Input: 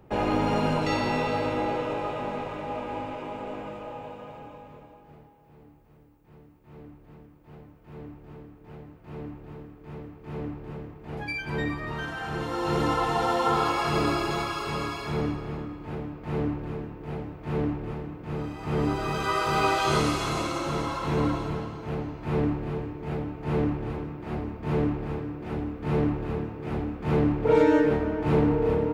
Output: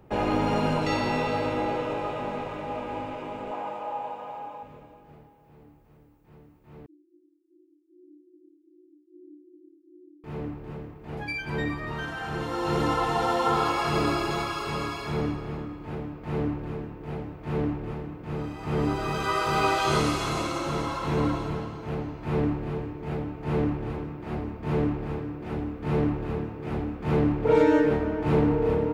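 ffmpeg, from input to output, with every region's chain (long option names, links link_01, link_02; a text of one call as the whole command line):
ffmpeg -i in.wav -filter_complex "[0:a]asettb=1/sr,asplit=3[link_01][link_02][link_03];[link_01]atrim=end=3.514[link_04];[link_02]atrim=start=3.51:end=4.63,asetpts=PTS-STARTPTS,afade=type=in:duration=0.004:curve=qsin,afade=type=out:start_time=1.116:duration=0.004:curve=qsin,highpass=frequency=370:poles=1,equalizer=frequency=850:width_type=o:width=0.76:gain=10.5[link_05];[link_03]atrim=start=4.626[link_06];[link_04][link_05]acrossfade=duration=0.004:curve1=hsin:curve2=qsin[link_07];[link_07][link_06]acrossfade=duration=0.004:curve1=qsin:curve2=hsin,asettb=1/sr,asplit=3[link_08][link_09][link_10];[link_08]atrim=end=6.864[link_11];[link_09]atrim=start=6.86:end=10.24,asetpts=PTS-STARTPTS,afade=type=in:duration=0.004:curve=qsin,afade=type=out:start_time=3.376:duration=0.004:curve=qsin,acrusher=bits=9:dc=4:mix=0:aa=0.000001,asuperpass=centerf=330:order=20:qfactor=4.8[link_12];[link_10]atrim=start=10.236[link_13];[link_11][link_12]acrossfade=duration=0.004:curve1=hsin:curve2=qsin[link_14];[link_14][link_13]acrossfade=duration=0.004:curve1=qsin:curve2=hsin" out.wav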